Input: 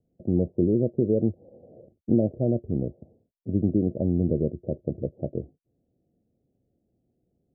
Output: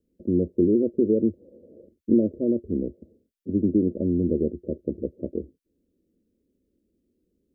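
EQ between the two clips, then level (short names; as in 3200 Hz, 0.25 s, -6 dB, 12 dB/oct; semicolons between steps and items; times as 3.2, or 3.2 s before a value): fixed phaser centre 310 Hz, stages 4; +4.0 dB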